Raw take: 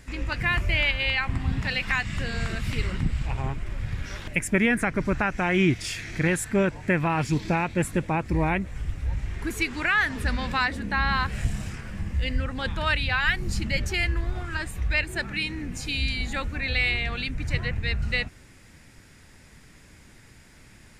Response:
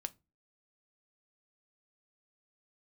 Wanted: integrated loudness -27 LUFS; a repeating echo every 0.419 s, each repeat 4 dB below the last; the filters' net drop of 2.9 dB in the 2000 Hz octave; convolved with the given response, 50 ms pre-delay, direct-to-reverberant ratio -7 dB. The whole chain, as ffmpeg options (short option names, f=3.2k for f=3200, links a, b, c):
-filter_complex "[0:a]equalizer=f=2k:t=o:g=-3.5,aecho=1:1:419|838|1257|1676|2095|2514|2933|3352|3771:0.631|0.398|0.25|0.158|0.0994|0.0626|0.0394|0.0249|0.0157,asplit=2[a][b];[1:a]atrim=start_sample=2205,adelay=50[c];[b][c]afir=irnorm=-1:irlink=0,volume=9dB[d];[a][d]amix=inputs=2:normalize=0,volume=-9.5dB"